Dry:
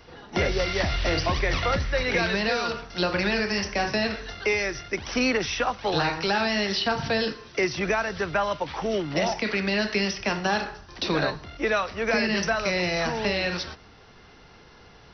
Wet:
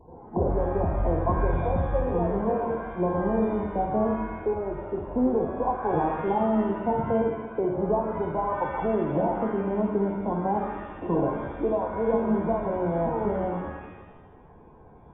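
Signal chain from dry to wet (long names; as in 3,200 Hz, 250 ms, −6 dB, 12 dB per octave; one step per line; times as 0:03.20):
linear-phase brick-wall low-pass 1,100 Hz
notch filter 600 Hz, Q 12
reverb with rising layers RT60 1.2 s, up +7 semitones, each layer −8 dB, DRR 3 dB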